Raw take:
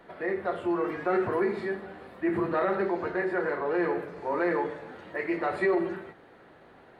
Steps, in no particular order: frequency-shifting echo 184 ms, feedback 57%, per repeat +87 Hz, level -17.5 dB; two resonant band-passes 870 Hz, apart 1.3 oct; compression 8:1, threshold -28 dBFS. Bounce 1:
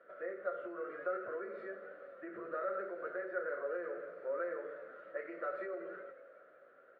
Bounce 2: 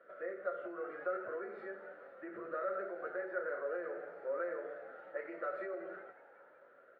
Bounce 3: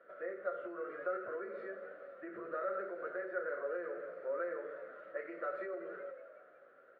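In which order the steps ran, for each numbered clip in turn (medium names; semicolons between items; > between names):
compression > frequency-shifting echo > two resonant band-passes; compression > two resonant band-passes > frequency-shifting echo; frequency-shifting echo > compression > two resonant band-passes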